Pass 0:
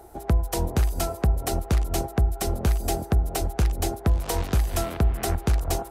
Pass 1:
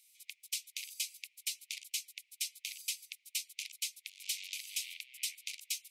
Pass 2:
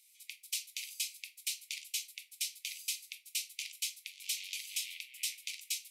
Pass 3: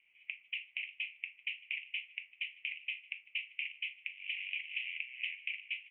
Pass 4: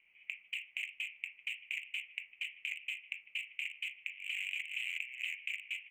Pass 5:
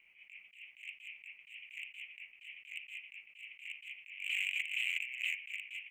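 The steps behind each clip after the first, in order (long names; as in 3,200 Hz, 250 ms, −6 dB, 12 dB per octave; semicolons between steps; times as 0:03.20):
Butterworth high-pass 2,200 Hz 96 dB per octave; high-shelf EQ 9,200 Hz −10.5 dB
convolution reverb RT60 0.35 s, pre-delay 5 ms, DRR 4 dB
Butterworth low-pass 2,900 Hz 96 dB per octave; single-tap delay 1,094 ms −22.5 dB; level +8 dB
adaptive Wiener filter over 9 samples; in parallel at +1 dB: compressor whose output falls as the input rises −44 dBFS, ratio −1; on the sum: level −3 dB
level that may rise only so fast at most 140 dB per second; level +4 dB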